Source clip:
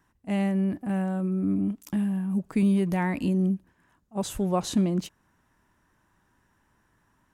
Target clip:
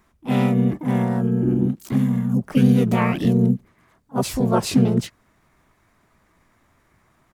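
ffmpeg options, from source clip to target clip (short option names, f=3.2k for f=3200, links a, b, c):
-filter_complex "[0:a]asplit=4[a][b][c][d];[b]asetrate=29433,aresample=44100,atempo=1.49831,volume=0dB[e];[c]asetrate=52444,aresample=44100,atempo=0.840896,volume=-4dB[f];[d]asetrate=55563,aresample=44100,atempo=0.793701,volume=0dB[g];[a][e][f][g]amix=inputs=4:normalize=0,volume=1.5dB"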